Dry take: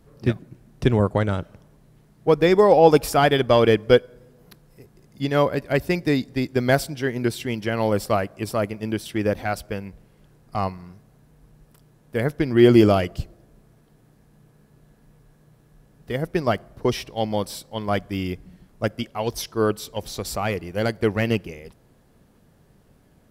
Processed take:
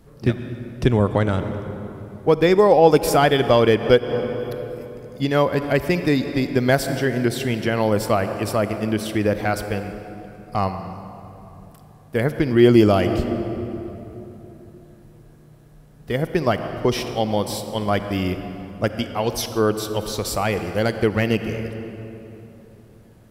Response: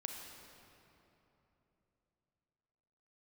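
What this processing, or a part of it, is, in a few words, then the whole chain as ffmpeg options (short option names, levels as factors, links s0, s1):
ducked reverb: -filter_complex "[0:a]asplit=3[s0][s1][s2];[1:a]atrim=start_sample=2205[s3];[s1][s3]afir=irnorm=-1:irlink=0[s4];[s2]apad=whole_len=1027807[s5];[s4][s5]sidechaincompress=threshold=0.0708:ratio=10:attack=22:release=173,volume=1.19[s6];[s0][s6]amix=inputs=2:normalize=0,volume=0.891"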